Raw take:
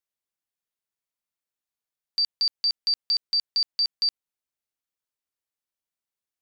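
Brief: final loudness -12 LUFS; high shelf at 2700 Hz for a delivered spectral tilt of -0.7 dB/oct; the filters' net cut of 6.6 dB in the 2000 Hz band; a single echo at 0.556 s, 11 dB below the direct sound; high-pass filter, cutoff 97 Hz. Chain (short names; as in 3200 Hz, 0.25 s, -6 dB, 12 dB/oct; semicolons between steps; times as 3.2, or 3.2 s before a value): HPF 97 Hz; bell 2000 Hz -7 dB; high shelf 2700 Hz -3.5 dB; echo 0.556 s -11 dB; gain +15.5 dB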